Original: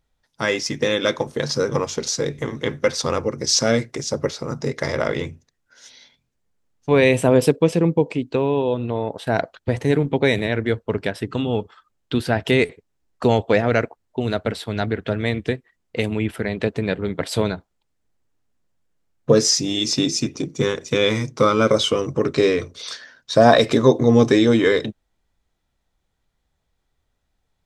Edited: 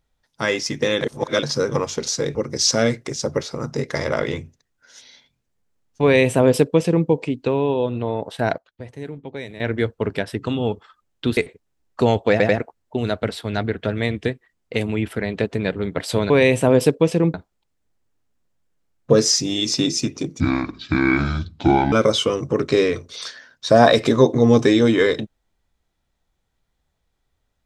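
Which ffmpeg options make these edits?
ffmpeg -i in.wav -filter_complex "[0:a]asplit=14[link_01][link_02][link_03][link_04][link_05][link_06][link_07][link_08][link_09][link_10][link_11][link_12][link_13][link_14];[link_01]atrim=end=1.012[link_15];[link_02]atrim=start=1.008:end=1.432,asetpts=PTS-STARTPTS,areverse[link_16];[link_03]atrim=start=1.428:end=2.352[link_17];[link_04]atrim=start=3.228:end=9.46,asetpts=PTS-STARTPTS,afade=type=out:start_time=5.982:duration=0.25:curve=log:silence=0.188365[link_18];[link_05]atrim=start=9.46:end=10.48,asetpts=PTS-STARTPTS,volume=-14.5dB[link_19];[link_06]atrim=start=10.48:end=12.252,asetpts=PTS-STARTPTS,afade=type=in:duration=0.25:curve=log:silence=0.188365[link_20];[link_07]atrim=start=12.598:end=13.632[link_21];[link_08]atrim=start=13.538:end=13.632[link_22];[link_09]atrim=start=13.538:end=13.632[link_23];[link_10]atrim=start=13.808:end=17.532[link_24];[link_11]atrim=start=6.908:end=7.952[link_25];[link_12]atrim=start=17.528:end=20.594[link_26];[link_13]atrim=start=20.59:end=21.58,asetpts=PTS-STARTPTS,asetrate=28665,aresample=44100[link_27];[link_14]atrim=start=21.576[link_28];[link_15][link_16]acrossfade=duration=0.004:curve1=hsin:curve2=hsin[link_29];[link_29][link_17]acrossfade=duration=0.004:curve1=hsin:curve2=hsin[link_30];[link_18][link_19][link_20]concat=n=3:v=0:a=1[link_31];[link_30][link_31]acrossfade=duration=0.004:curve1=hsin:curve2=hsin[link_32];[link_32][link_21]acrossfade=duration=0.004:curve1=hsin:curve2=hsin[link_33];[link_33][link_22]acrossfade=duration=0.004:curve1=hsin:curve2=hsin[link_34];[link_34][link_23]acrossfade=duration=0.004:curve1=hsin:curve2=hsin[link_35];[link_35][link_24]acrossfade=duration=0.004:curve1=hsin:curve2=hsin[link_36];[link_36][link_25]acrossfade=duration=0.004:curve1=hsin:curve2=hsin[link_37];[link_37][link_26]acrossfade=duration=0.004:curve1=hsin:curve2=hsin[link_38];[link_38][link_27]acrossfade=duration=0.004:curve1=hsin:curve2=hsin[link_39];[link_39][link_28]acrossfade=duration=0.004:curve1=hsin:curve2=hsin" out.wav

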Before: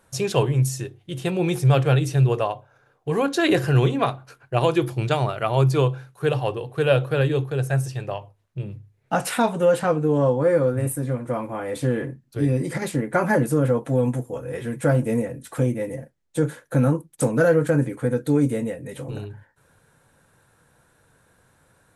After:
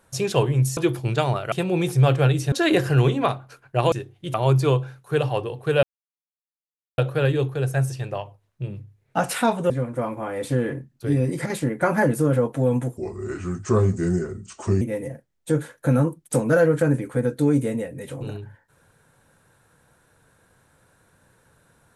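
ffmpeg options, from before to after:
ffmpeg -i in.wav -filter_complex "[0:a]asplit=10[link_01][link_02][link_03][link_04][link_05][link_06][link_07][link_08][link_09][link_10];[link_01]atrim=end=0.772[link_11];[link_02]atrim=start=4.698:end=5.452[link_12];[link_03]atrim=start=1.188:end=2.192[link_13];[link_04]atrim=start=3.298:end=4.702[link_14];[link_05]atrim=start=0.768:end=1.192[link_15];[link_06]atrim=start=5.448:end=6.94,asetpts=PTS-STARTPTS,afade=type=out:start_time=1.488:duration=0.004:curve=hsin,apad=pad_dur=1.15[link_16];[link_07]atrim=start=6.94:end=9.662,asetpts=PTS-STARTPTS,afade=type=in:duration=0.004:curve=hsin[link_17];[link_08]atrim=start=11.018:end=14.294[link_18];[link_09]atrim=start=14.29:end=15.69,asetpts=PTS-STARTPTS,asetrate=33516,aresample=44100[link_19];[link_10]atrim=start=15.686[link_20];[link_11][link_12]acrossfade=duration=0.004:curve1=hsin:curve2=hsin[link_21];[link_21][link_13]acrossfade=duration=0.004:curve1=hsin:curve2=hsin[link_22];[link_22][link_14]acrossfade=duration=0.004:curve1=hsin:curve2=hsin[link_23];[link_23][link_15]acrossfade=duration=0.004:curve1=hsin:curve2=hsin[link_24];[link_16][link_17]concat=n=2:v=0:a=1[link_25];[link_24][link_25]acrossfade=duration=0.004:curve1=hsin:curve2=hsin[link_26];[link_26][link_18]acrossfade=duration=0.004:curve1=hsin:curve2=hsin[link_27];[link_27][link_19]acrossfade=duration=0.004:curve1=hsin:curve2=hsin[link_28];[link_28][link_20]acrossfade=duration=0.004:curve1=hsin:curve2=hsin" out.wav

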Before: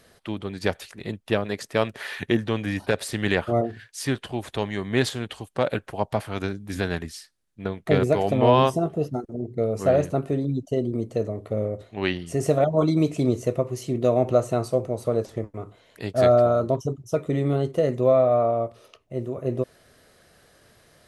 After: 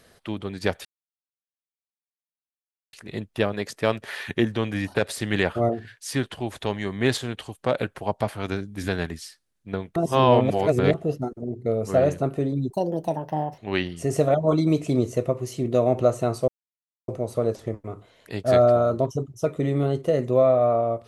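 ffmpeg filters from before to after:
ffmpeg -i in.wav -filter_complex "[0:a]asplit=7[link_01][link_02][link_03][link_04][link_05][link_06][link_07];[link_01]atrim=end=0.85,asetpts=PTS-STARTPTS,afade=type=out:start_time=0.846:duration=0.004:curve=hsin,apad=pad_dur=2.08[link_08];[link_02]atrim=start=0.85:end=7.882,asetpts=PTS-STARTPTS,afade=type=in:duration=0.004:curve=hsin[link_09];[link_03]atrim=start=7.878:end=8.862,asetpts=PTS-STARTPTS,areverse[link_10];[link_04]atrim=start=8.858:end=10.624[link_11];[link_05]atrim=start=10.62:end=11.88,asetpts=PTS-STARTPTS,asetrate=63063,aresample=44100,atrim=end_sample=38857,asetpts=PTS-STARTPTS[link_12];[link_06]atrim=start=11.876:end=14.78,asetpts=PTS-STARTPTS,afade=type=out:start_time=2.9:duration=0.004:curve=hsin,apad=pad_dur=0.6[link_13];[link_07]atrim=start=14.78,asetpts=PTS-STARTPTS,afade=type=in:duration=0.004:curve=hsin[link_14];[link_08][link_09]concat=n=2:v=0:a=1[link_15];[link_15][link_10]acrossfade=duration=0.004:curve1=hsin:curve2=hsin[link_16];[link_16][link_11]acrossfade=duration=0.004:curve1=hsin:curve2=hsin[link_17];[link_17][link_12]acrossfade=duration=0.004:curve1=hsin:curve2=hsin[link_18];[link_13][link_14]concat=n=2:v=0:a=1[link_19];[link_18][link_19]acrossfade=duration=0.004:curve1=hsin:curve2=hsin" out.wav

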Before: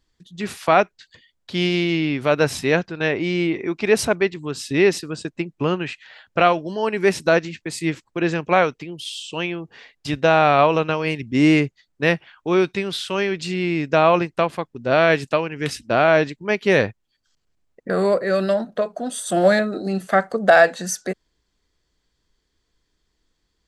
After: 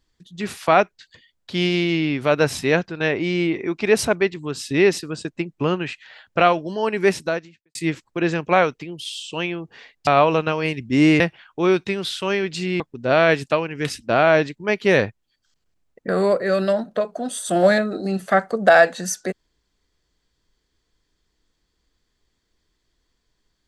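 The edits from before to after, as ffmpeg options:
ffmpeg -i in.wav -filter_complex "[0:a]asplit=5[link_01][link_02][link_03][link_04][link_05];[link_01]atrim=end=7.75,asetpts=PTS-STARTPTS,afade=type=out:start_time=7.1:duration=0.65:curve=qua[link_06];[link_02]atrim=start=7.75:end=10.072,asetpts=PTS-STARTPTS,afade=type=in:duration=0.004:curve=hsin[link_07];[link_03]atrim=start=10.488:end=11.622[link_08];[link_04]atrim=start=12.078:end=13.682[link_09];[link_05]atrim=start=14.608[link_10];[link_06][link_07]concat=n=2:v=0:a=1[link_11];[link_11][link_08]acrossfade=duration=0.004:curve1=hsin:curve2=hsin[link_12];[link_12][link_09]acrossfade=duration=0.004:curve1=hsin:curve2=hsin[link_13];[link_13][link_10]acrossfade=duration=0.004:curve1=hsin:curve2=hsin" out.wav

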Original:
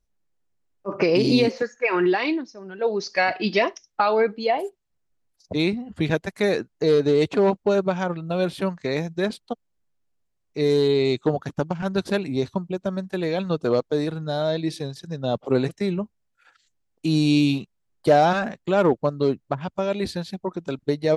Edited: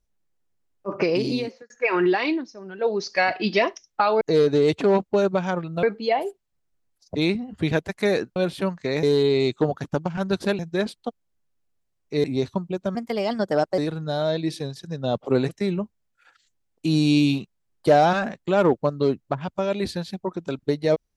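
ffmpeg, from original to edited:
ffmpeg -i in.wav -filter_complex "[0:a]asplit=10[link_01][link_02][link_03][link_04][link_05][link_06][link_07][link_08][link_09][link_10];[link_01]atrim=end=1.7,asetpts=PTS-STARTPTS,afade=type=out:start_time=0.89:duration=0.81[link_11];[link_02]atrim=start=1.7:end=4.212,asetpts=PTS-STARTPTS,afade=type=in:duration=0.004:curve=hsin[link_12];[link_03]atrim=start=6.738:end=8.362[link_13];[link_04]atrim=start=4.208:end=6.742[link_14];[link_05]atrim=start=8.358:end=9.032[link_15];[link_06]atrim=start=10.678:end=12.242[link_16];[link_07]atrim=start=9.028:end=10.682[link_17];[link_08]atrim=start=12.238:end=12.954[link_18];[link_09]atrim=start=12.95:end=13.98,asetpts=PTS-STARTPTS,asetrate=54684,aresample=44100,atrim=end_sample=36631,asetpts=PTS-STARTPTS[link_19];[link_10]atrim=start=13.976[link_20];[link_11][link_12]concat=n=2:v=0:a=1[link_21];[link_21][link_13]acrossfade=duration=0.004:curve1=hsin:curve2=hsin[link_22];[link_22][link_14]acrossfade=duration=0.004:curve1=hsin:curve2=hsin[link_23];[link_23][link_15]acrossfade=duration=0.004:curve1=hsin:curve2=hsin[link_24];[link_24][link_16]acrossfade=duration=0.004:curve1=hsin:curve2=hsin[link_25];[link_25][link_17]acrossfade=duration=0.004:curve1=hsin:curve2=hsin[link_26];[link_26][link_18]acrossfade=duration=0.004:curve1=hsin:curve2=hsin[link_27];[link_27][link_19]acrossfade=duration=0.004:curve1=hsin:curve2=hsin[link_28];[link_28][link_20]acrossfade=duration=0.004:curve1=hsin:curve2=hsin" out.wav

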